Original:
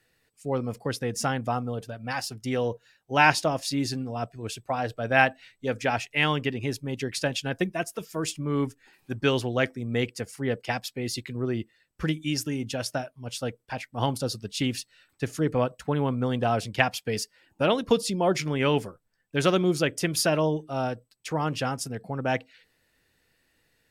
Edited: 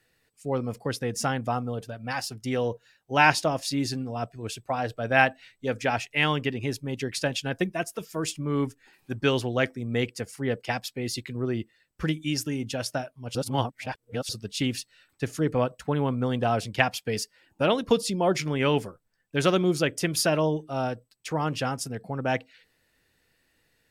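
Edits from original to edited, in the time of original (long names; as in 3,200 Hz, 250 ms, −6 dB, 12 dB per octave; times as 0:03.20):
0:13.35–0:14.29: reverse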